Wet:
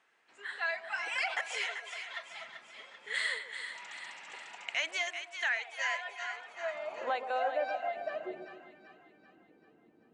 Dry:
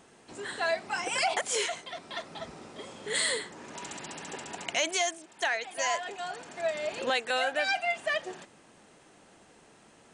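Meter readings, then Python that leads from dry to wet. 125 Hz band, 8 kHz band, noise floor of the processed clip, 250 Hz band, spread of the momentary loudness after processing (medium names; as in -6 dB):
under -15 dB, -14.5 dB, -65 dBFS, -10.5 dB, 14 LU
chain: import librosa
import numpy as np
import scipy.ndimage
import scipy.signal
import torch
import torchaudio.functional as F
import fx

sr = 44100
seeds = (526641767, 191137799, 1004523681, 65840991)

y = fx.filter_sweep_bandpass(x, sr, from_hz=1900.0, to_hz=350.0, start_s=6.14, end_s=8.27, q=1.5)
y = fx.noise_reduce_blind(y, sr, reduce_db=6)
y = fx.echo_split(y, sr, split_hz=960.0, low_ms=133, high_ms=387, feedback_pct=52, wet_db=-8.5)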